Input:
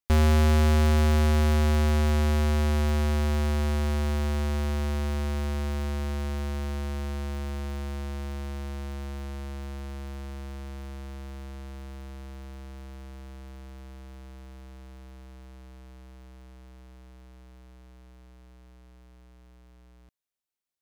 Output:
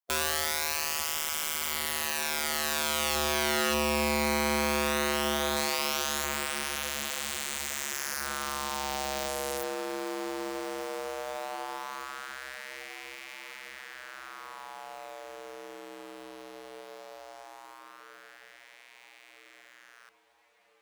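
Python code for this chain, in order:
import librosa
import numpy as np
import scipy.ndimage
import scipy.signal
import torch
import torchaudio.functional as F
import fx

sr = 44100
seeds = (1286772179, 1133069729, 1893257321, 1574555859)

p1 = fx.spec_clip(x, sr, under_db=21)
p2 = fx.filter_lfo_highpass(p1, sr, shape='sine', hz=0.17, low_hz=360.0, high_hz=2200.0, q=3.3)
p3 = fx.quant_companded(p2, sr, bits=4)
p4 = p2 + (p3 * 10.0 ** (-4.0 / 20.0))
p5 = (np.mod(10.0 ** (15.5 / 20.0) * p4 + 1.0, 2.0) - 1.0) / 10.0 ** (15.5 / 20.0)
p6 = p5 + fx.echo_diffused(p5, sr, ms=1542, feedback_pct=48, wet_db=-16.0, dry=0)
y = p6 * 10.0 ** (-5.5 / 20.0)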